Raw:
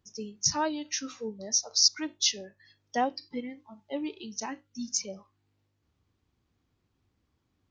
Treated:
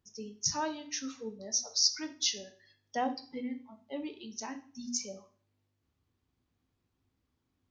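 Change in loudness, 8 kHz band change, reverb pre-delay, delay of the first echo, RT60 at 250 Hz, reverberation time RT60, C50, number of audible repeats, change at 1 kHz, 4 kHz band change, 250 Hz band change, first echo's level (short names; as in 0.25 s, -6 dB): -4.5 dB, -4.5 dB, 11 ms, none, 0.50 s, 0.45 s, 14.0 dB, none, -4.5 dB, -4.5 dB, -3.5 dB, none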